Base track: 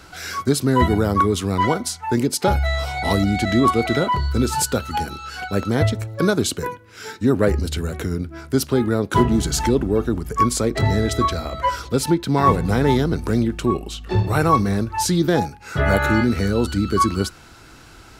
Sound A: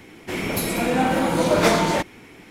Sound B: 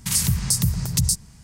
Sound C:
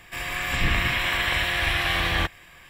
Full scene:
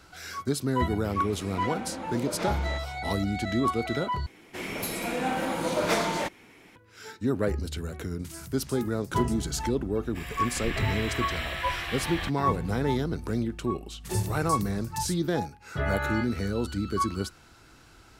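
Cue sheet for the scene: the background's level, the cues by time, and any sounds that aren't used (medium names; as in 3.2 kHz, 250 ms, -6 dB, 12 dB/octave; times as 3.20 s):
base track -9.5 dB
0.76 s: add A -16.5 dB + distance through air 56 m
4.26 s: replace with A -6.5 dB + bass shelf 400 Hz -5 dB
8.19 s: add B -8 dB + compression 2.5:1, threshold -41 dBFS
10.03 s: add C -10 dB
13.99 s: add B -17 dB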